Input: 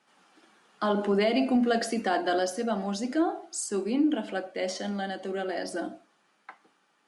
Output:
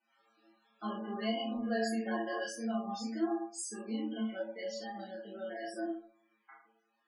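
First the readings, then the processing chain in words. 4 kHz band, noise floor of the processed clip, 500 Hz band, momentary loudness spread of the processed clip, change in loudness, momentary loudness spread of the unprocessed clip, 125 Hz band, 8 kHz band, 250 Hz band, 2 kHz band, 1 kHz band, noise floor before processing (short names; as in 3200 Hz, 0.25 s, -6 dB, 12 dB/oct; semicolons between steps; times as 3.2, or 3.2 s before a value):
-7.5 dB, -78 dBFS, -10.0 dB, 9 LU, -9.0 dB, 9 LU, n/a, -8.0 dB, -8.5 dB, -8.0 dB, -10.0 dB, -69 dBFS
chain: metallic resonator 110 Hz, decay 0.65 s, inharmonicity 0.002; loudest bins only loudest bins 32; chorus voices 4, 0.75 Hz, delay 27 ms, depth 4.6 ms; gain +8.5 dB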